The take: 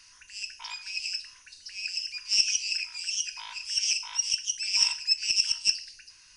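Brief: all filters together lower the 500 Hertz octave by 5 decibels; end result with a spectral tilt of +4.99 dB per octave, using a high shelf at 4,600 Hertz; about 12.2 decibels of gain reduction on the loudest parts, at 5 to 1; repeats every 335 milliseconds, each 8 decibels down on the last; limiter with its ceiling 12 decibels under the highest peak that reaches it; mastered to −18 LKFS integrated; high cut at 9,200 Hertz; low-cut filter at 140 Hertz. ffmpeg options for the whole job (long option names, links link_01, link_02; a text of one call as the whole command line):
ffmpeg -i in.wav -af "highpass=140,lowpass=9200,equalizer=frequency=500:width_type=o:gain=-7,highshelf=frequency=4600:gain=7.5,acompressor=threshold=-28dB:ratio=5,alimiter=level_in=4.5dB:limit=-24dB:level=0:latency=1,volume=-4.5dB,aecho=1:1:335|670|1005|1340|1675:0.398|0.159|0.0637|0.0255|0.0102,volume=18dB" out.wav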